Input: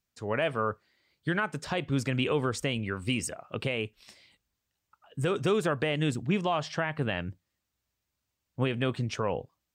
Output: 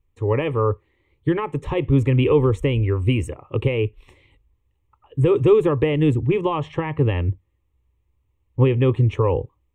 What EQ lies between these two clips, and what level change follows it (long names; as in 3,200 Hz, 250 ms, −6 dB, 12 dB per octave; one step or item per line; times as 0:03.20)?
spectral tilt −4 dB per octave
phaser with its sweep stopped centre 1,000 Hz, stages 8
+8.0 dB